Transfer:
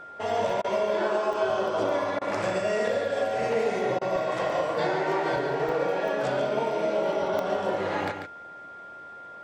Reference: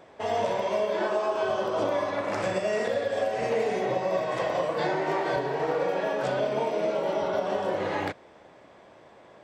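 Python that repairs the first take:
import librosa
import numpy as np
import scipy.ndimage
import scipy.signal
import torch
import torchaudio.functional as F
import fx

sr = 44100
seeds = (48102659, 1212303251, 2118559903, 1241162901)

y = fx.notch(x, sr, hz=1400.0, q=30.0)
y = fx.fix_interpolate(y, sr, at_s=(0.5, 1.33, 4.16, 5.69, 6.08, 7.39), length_ms=1.1)
y = fx.fix_interpolate(y, sr, at_s=(0.62, 2.19, 3.99), length_ms=22.0)
y = fx.fix_echo_inverse(y, sr, delay_ms=142, level_db=-7.5)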